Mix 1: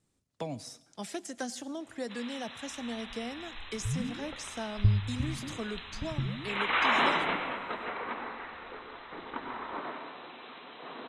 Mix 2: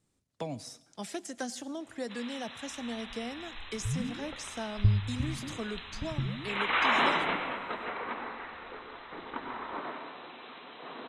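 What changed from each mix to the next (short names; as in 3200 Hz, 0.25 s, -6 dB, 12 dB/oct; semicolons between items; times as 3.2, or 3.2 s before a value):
none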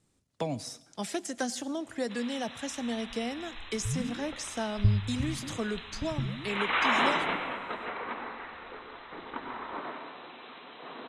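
speech +4.5 dB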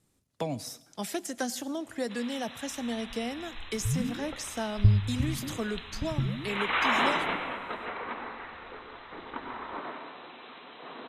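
speech: remove LPF 10000 Hz 24 dB/oct; second sound +3.5 dB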